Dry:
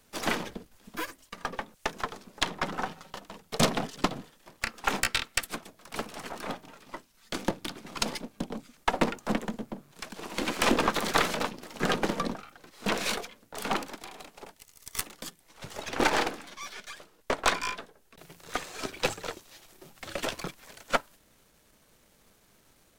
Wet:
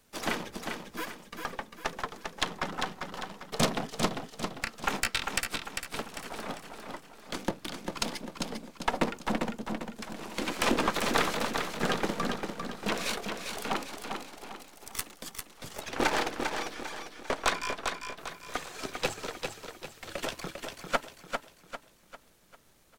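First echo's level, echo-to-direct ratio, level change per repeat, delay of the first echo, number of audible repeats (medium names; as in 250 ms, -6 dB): -5.5 dB, -4.5 dB, -7.5 dB, 398 ms, 4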